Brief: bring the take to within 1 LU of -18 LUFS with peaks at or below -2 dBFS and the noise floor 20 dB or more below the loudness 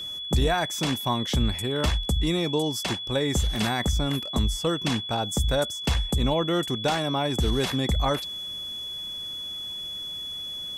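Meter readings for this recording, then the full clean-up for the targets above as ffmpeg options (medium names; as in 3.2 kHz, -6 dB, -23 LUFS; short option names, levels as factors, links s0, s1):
steady tone 3.4 kHz; tone level -32 dBFS; loudness -26.5 LUFS; peak level -14.0 dBFS; loudness target -18.0 LUFS
-> -af "bandreject=f=3400:w=30"
-af "volume=2.66"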